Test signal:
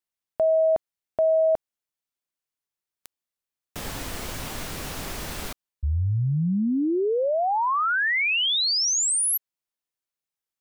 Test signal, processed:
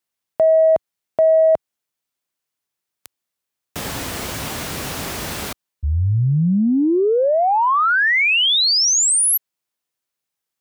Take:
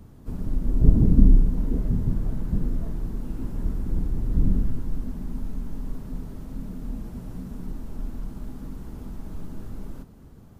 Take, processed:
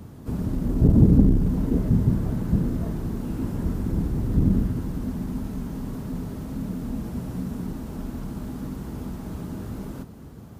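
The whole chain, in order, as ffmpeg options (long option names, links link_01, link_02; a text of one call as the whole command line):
ffmpeg -i in.wav -af "acontrast=89,highpass=69" out.wav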